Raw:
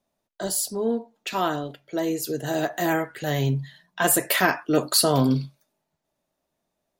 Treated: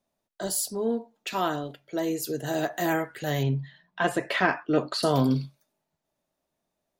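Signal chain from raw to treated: 3.43–5.03 s: low-pass 3.3 kHz 12 dB/octave; trim -2.5 dB

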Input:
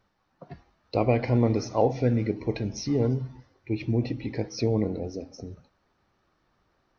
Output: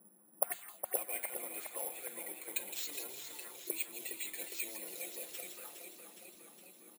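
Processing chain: CVSD coder 64 kbps; low-pass that closes with the level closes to 2.6 kHz, closed at -22.5 dBFS; comb 5.7 ms, depth 86%; reverse; compression 6:1, threshold -35 dBFS, peak gain reduction 19 dB; reverse; auto-wah 200–3700 Hz, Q 3.4, up, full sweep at -38.5 dBFS; three-band isolator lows -20 dB, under 240 Hz, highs -22 dB, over 3.7 kHz; on a send: feedback echo behind a high-pass 164 ms, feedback 51%, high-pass 3.3 kHz, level -5.5 dB; on the sum: careless resampling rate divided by 4×, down filtered, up zero stuff; modulated delay 412 ms, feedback 66%, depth 62 cents, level -7.5 dB; trim +16.5 dB

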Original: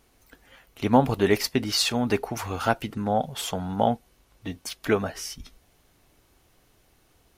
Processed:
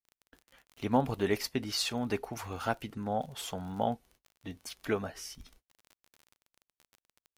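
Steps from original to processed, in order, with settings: gate -52 dBFS, range -38 dB; crackle 31 per s -34 dBFS; trim -8.5 dB

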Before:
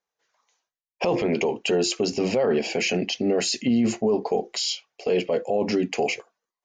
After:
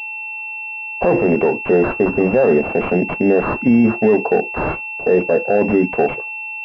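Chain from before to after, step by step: whistle 860 Hz -46 dBFS; class-D stage that switches slowly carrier 2.7 kHz; trim +8.5 dB

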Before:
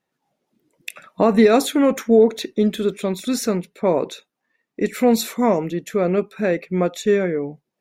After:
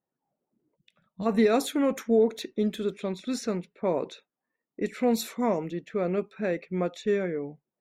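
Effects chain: level-controlled noise filter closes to 1.1 kHz, open at -15.5 dBFS; time-frequency box 0.76–1.26 s, 220–2900 Hz -16 dB; trim -8.5 dB

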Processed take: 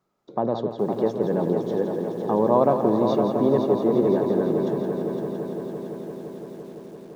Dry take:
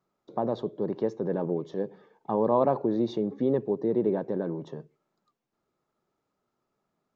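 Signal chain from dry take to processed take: multi-head delay 170 ms, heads first and third, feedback 75%, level -8 dB; bit-crushed delay 419 ms, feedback 55%, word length 8-bit, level -14 dB; trim +4 dB

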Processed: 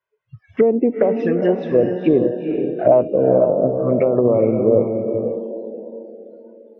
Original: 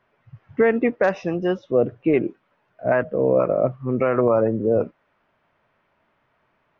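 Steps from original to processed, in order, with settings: time-frequency box 2.79–3.20 s, 510–3100 Hz +8 dB; in parallel at -3 dB: compression 8:1, threshold -30 dBFS, peak gain reduction 21.5 dB; on the sum: touch-sensitive flanger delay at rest 2 ms, full sweep at -14.5 dBFS; tilt EQ +2 dB/octave; low-pass that closes with the level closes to 520 Hz, closed at -18 dBFS; on a send: echo that smears into a reverb 462 ms, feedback 41%, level -5 dB; on the sum: spectral noise reduction 27 dB; trim +7 dB

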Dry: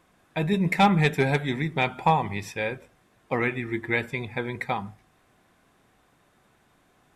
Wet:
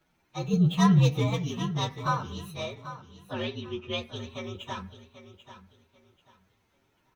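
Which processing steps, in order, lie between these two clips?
frequency axis rescaled in octaves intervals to 120%; 0.53–1.30 s: peaking EQ 150 Hz +9 dB 1.8 oct; 2.75–4.16 s: low-pass 5.1 kHz 12 dB/octave; feedback delay 789 ms, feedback 25%, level -13 dB; trim -4.5 dB

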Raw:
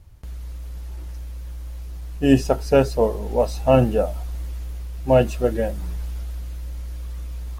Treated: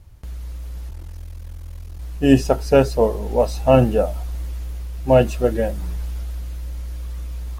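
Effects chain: 0.89–2.00 s: ring modulator 21 Hz; trim +2 dB

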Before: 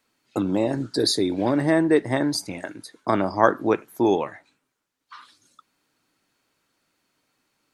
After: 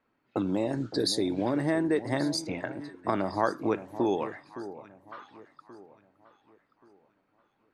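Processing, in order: level-controlled noise filter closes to 1.6 kHz, open at -18 dBFS; compression 2:1, threshold -29 dBFS, peak gain reduction 10.5 dB; on a send: echo whose repeats swap between lows and highs 565 ms, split 930 Hz, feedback 54%, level -12.5 dB

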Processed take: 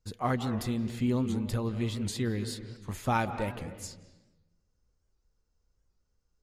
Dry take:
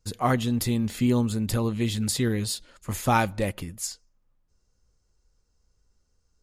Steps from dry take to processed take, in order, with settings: treble shelf 6 kHz -8.5 dB; reverberation RT60 1.1 s, pre-delay 159 ms, DRR 9.5 dB; warped record 78 rpm, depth 160 cents; trim -6 dB

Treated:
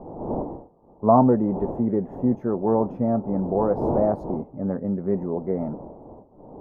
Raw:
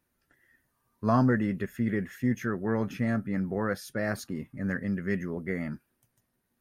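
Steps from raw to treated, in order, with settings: wind noise 340 Hz -40 dBFS; FFT filter 100 Hz 0 dB, 890 Hz +14 dB, 1.7 kHz -20 dB, 9.2 kHz -28 dB

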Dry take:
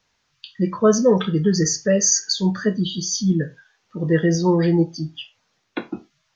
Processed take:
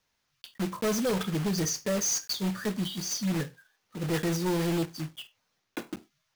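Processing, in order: block-companded coder 3-bit; hard clipper -15.5 dBFS, distortion -11 dB; trim -8.5 dB

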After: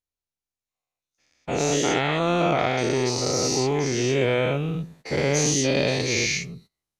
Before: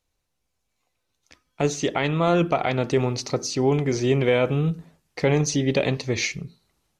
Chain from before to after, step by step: every event in the spectrogram widened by 240 ms; gate -41 dBFS, range -17 dB; treble shelf 4.1 kHz +5.5 dB; trim -7 dB

